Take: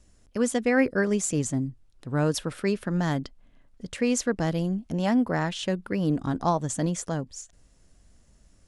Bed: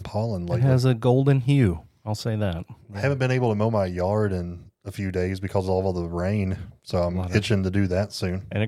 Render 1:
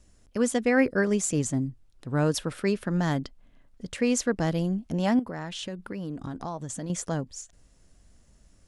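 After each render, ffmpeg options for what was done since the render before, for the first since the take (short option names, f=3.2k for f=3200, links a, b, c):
-filter_complex "[0:a]asettb=1/sr,asplit=3[a][b][c];[a]atrim=end=5.194[d];[b]atrim=start=5.19:end=6.9,asetpts=PTS-STARTPTS,afade=t=in:d=0.004:c=qsin,afade=t=out:st=1.706:d=0.004:c=qsin,acompressor=threshold=-32dB:ratio=4:attack=3.2:release=140:knee=1:detection=peak[e];[c]atrim=start=6.896[f];[d][e]acrossfade=d=0.004:c1=hsin:c2=qsin[g];[g][f]acrossfade=d=0.004:c1=qsin:c2=hsin"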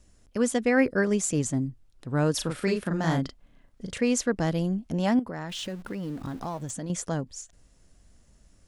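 -filter_complex "[0:a]asettb=1/sr,asplit=3[a][b][c];[a]atrim=end=2.344[d];[b]atrim=start=2.34:end=3.98,asetpts=PTS-STARTPTS,afade=t=in:d=0.004:c=qsin,afade=t=out:st=1.636:d=0.004:c=qsin,asplit=2[e][f];[f]adelay=37,volume=-3.5dB[g];[e][g]amix=inputs=2:normalize=0,atrim=end_sample=72324[h];[c]atrim=start=3.976[i];[d][h]acrossfade=d=0.004:c1=hsin:c2=qsin[j];[j][i]acrossfade=d=0.004:c1=qsin:c2=hsin,asettb=1/sr,asplit=3[k][l][m];[k]atrim=end=5.494[n];[l]atrim=start=5.49:end=6.71,asetpts=PTS-STARTPTS,afade=t=in:d=0.004:c=qsin,afade=t=out:st=1.216:d=0.004:c=qsin,aeval=exprs='val(0)+0.5*0.00596*sgn(val(0))':c=same[o];[m]atrim=start=6.706[p];[n][o]acrossfade=d=0.004:c1=hsin:c2=qsin[q];[q][p]acrossfade=d=0.004:c1=qsin:c2=hsin"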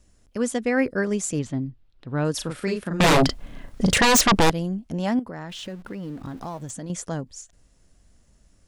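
-filter_complex "[0:a]asettb=1/sr,asplit=3[a][b][c];[a]atrim=end=1.394[d];[b]atrim=start=1.39:end=2.25,asetpts=PTS-STARTPTS,afade=t=in:d=0.004:c=qsin,afade=t=out:st=0.856:d=0.004:c=qsin,highshelf=f=5.4k:t=q:w=1.5:g=-13[e];[c]atrim=start=2.246[f];[d][e]acrossfade=d=0.004:c1=hsin:c2=qsin[g];[g][f]acrossfade=d=0.004:c1=qsin:c2=hsin,asettb=1/sr,asplit=3[h][i][j];[h]atrim=end=3.004[k];[i]atrim=start=3:end=4.5,asetpts=PTS-STARTPTS,afade=t=in:d=0.004:c=qsin,afade=t=out:st=1.496:d=0.004:c=qsin,aeval=exprs='0.237*sin(PI/2*5.62*val(0)/0.237)':c=same[l];[j]atrim=start=4.496[m];[k][l]acrossfade=d=0.004:c1=hsin:c2=qsin[n];[n][m]acrossfade=d=0.004:c1=qsin:c2=hsin,asettb=1/sr,asplit=3[o][p][q];[o]atrim=end=5.344[r];[p]atrim=start=5.34:end=6.37,asetpts=PTS-STARTPTS,afade=t=in:d=0.004:c=qsin,afade=t=out:st=1.026:d=0.004:c=qsin,highshelf=f=4.9k:g=-4.5[s];[q]atrim=start=6.366[t];[r][s]acrossfade=d=0.004:c1=hsin:c2=qsin[u];[u][t]acrossfade=d=0.004:c1=qsin:c2=hsin"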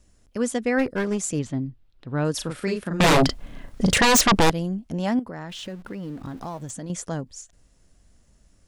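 -filter_complex "[0:a]asplit=3[a][b][c];[a]afade=t=out:st=0.78:d=0.02[d];[b]aeval=exprs='clip(val(0),-1,0.0596)':c=same,afade=t=in:st=0.78:d=0.02,afade=t=out:st=1.19:d=0.02[e];[c]afade=t=in:st=1.19:d=0.02[f];[d][e][f]amix=inputs=3:normalize=0"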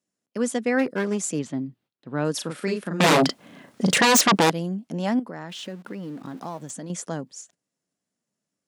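-af "agate=range=-18dB:threshold=-50dB:ratio=16:detection=peak,highpass=f=160:w=0.5412,highpass=f=160:w=1.3066"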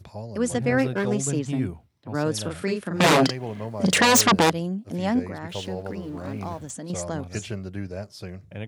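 -filter_complex "[1:a]volume=-10.5dB[a];[0:a][a]amix=inputs=2:normalize=0"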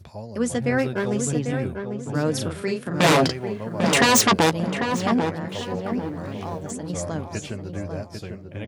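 -filter_complex "[0:a]asplit=2[a][b];[b]adelay=13,volume=-11dB[c];[a][c]amix=inputs=2:normalize=0,asplit=2[d][e];[e]adelay=796,lowpass=f=1.5k:p=1,volume=-5.5dB,asplit=2[f][g];[g]adelay=796,lowpass=f=1.5k:p=1,volume=0.36,asplit=2[h][i];[i]adelay=796,lowpass=f=1.5k:p=1,volume=0.36,asplit=2[j][k];[k]adelay=796,lowpass=f=1.5k:p=1,volume=0.36[l];[d][f][h][j][l]amix=inputs=5:normalize=0"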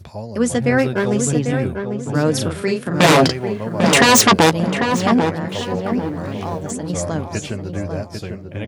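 -af "volume=6dB,alimiter=limit=-1dB:level=0:latency=1"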